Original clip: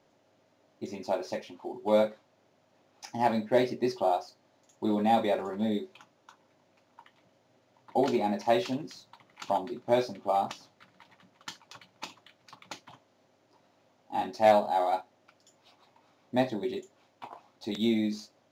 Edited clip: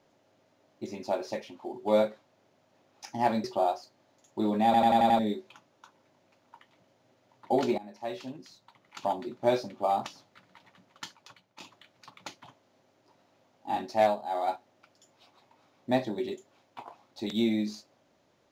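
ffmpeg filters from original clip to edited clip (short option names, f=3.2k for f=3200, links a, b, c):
-filter_complex "[0:a]asplit=11[a][b][c][d][e][f][g][h][i][j][k];[a]atrim=end=3.442[l];[b]atrim=start=3.888:end=5.192[m];[c]atrim=start=5.098:end=5.192[n];[d]atrim=start=5.098:end=5.192[o];[e]atrim=start=5.098:end=5.192[p];[f]atrim=start=5.098:end=5.192[q];[g]atrim=start=5.098:end=5.192[r];[h]atrim=start=5.638:end=8.23,asetpts=PTS-STARTPTS,afade=t=out:st=2.588:d=0.004:c=hsin:silence=0.105925[s];[i]atrim=start=8.23:end=12.05,asetpts=PTS-STARTPTS,afade=t=in:d=1.51:silence=0.105925,afade=t=out:st=3.26:d=0.56:silence=0.251189[t];[j]atrim=start=12.05:end=14.67,asetpts=PTS-STARTPTS,afade=t=in:d=0.004:c=hsin:silence=0.251189,afade=t=out:st=2.32:d=0.3:silence=0.316228[u];[k]atrim=start=14.67,asetpts=PTS-STARTPTS,afade=t=in:d=0.3:silence=0.316228[v];[l][m]acrossfade=d=0.004:c1=hsin:c2=hsin[w];[w][n]acrossfade=d=0.004:c1=hsin:c2=hsin[x];[x][o]acrossfade=d=0.004:c1=hsin:c2=hsin[y];[y][p]acrossfade=d=0.004:c1=hsin:c2=hsin[z];[z][q]acrossfade=d=0.004:c1=hsin:c2=hsin[aa];[aa][r]acrossfade=d=0.004:c1=hsin:c2=hsin[ab];[s][t][u][v]concat=n=4:v=0:a=1[ac];[ab][ac]acrossfade=d=0.004:c1=hsin:c2=hsin"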